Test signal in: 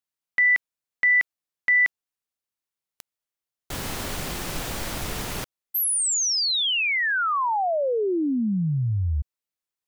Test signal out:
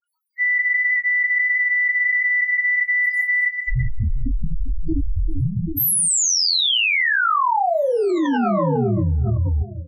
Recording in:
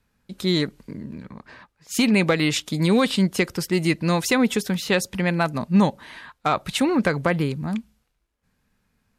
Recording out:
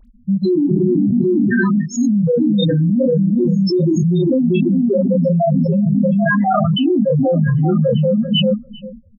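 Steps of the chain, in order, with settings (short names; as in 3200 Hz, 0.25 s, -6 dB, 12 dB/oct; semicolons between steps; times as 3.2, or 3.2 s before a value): notches 60/120/180 Hz; non-linear reverb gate 0.41 s flat, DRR 12 dB; loudest bins only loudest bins 1; AGC gain up to 5 dB; low shelf 400 Hz -11 dB; delay with a stepping band-pass 0.393 s, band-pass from 190 Hz, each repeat 1.4 oct, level -3.5 dB; reverb removal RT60 0.52 s; doubler 25 ms -3.5 dB; harmonic-percussive split percussive -12 dB; high shelf 2500 Hz -5.5 dB; dispersion highs, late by 54 ms, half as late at 1800 Hz; fast leveller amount 100%; gain +3.5 dB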